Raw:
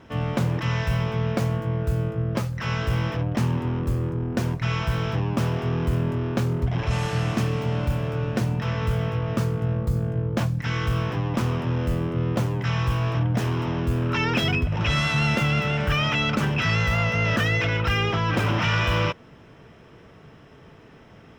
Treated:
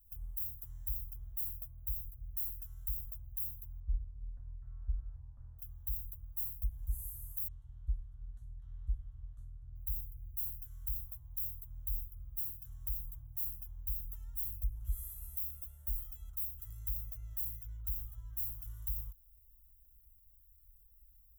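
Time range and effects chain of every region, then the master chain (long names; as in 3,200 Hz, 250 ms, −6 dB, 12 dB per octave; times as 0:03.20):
0:03.80–0:05.59: low-pass filter 1,900 Hz 24 dB per octave + mains-hum notches 50/100/150 Hz
0:07.48–0:09.76: low-pass filter 4,400 Hz 24 dB per octave + parametric band 450 Hz −12 dB 1.2 octaves
whole clip: inverse Chebyshev band-stop filter 150–5,400 Hz, stop band 60 dB; spectral tilt +2 dB per octave; brickwall limiter −38 dBFS; level +12.5 dB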